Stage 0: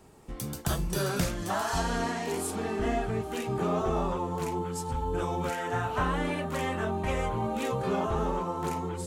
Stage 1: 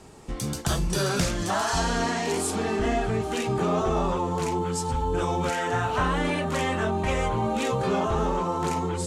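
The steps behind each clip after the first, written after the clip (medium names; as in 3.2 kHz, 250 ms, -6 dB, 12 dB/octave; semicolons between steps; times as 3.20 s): low-pass 7.1 kHz 12 dB/octave; treble shelf 4.7 kHz +8.5 dB; in parallel at +1.5 dB: peak limiter -27 dBFS, peak gain reduction 11.5 dB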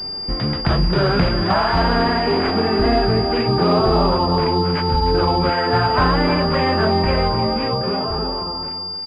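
fade out at the end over 2.23 s; delay 308 ms -10.5 dB; class-D stage that switches slowly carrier 4.8 kHz; trim +8.5 dB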